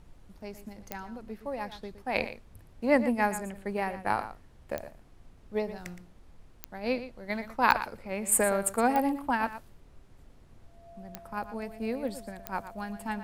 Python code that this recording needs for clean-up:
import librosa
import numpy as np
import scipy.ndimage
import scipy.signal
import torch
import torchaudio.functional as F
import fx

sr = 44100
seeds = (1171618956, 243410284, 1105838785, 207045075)

y = fx.fix_declick_ar(x, sr, threshold=10.0)
y = fx.notch(y, sr, hz=680.0, q=30.0)
y = fx.noise_reduce(y, sr, print_start_s=10.0, print_end_s=10.5, reduce_db=21.0)
y = fx.fix_echo_inverse(y, sr, delay_ms=117, level_db=-12.5)